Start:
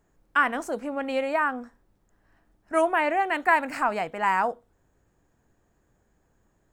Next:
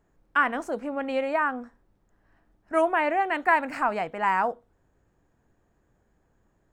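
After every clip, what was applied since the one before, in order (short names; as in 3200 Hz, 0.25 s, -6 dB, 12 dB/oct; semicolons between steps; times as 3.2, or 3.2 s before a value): high shelf 4800 Hz -8.5 dB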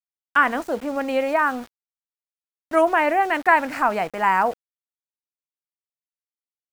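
sample gate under -41.5 dBFS; gain +5 dB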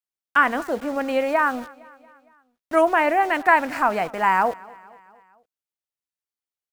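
feedback echo 0.23 s, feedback 57%, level -23 dB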